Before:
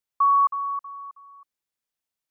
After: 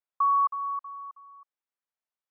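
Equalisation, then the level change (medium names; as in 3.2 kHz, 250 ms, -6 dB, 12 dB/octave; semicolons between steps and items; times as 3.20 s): dynamic bell 1 kHz, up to -3 dB, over -28 dBFS, Q 2.4; band-pass filter 1 kHz, Q 0.82; -2.0 dB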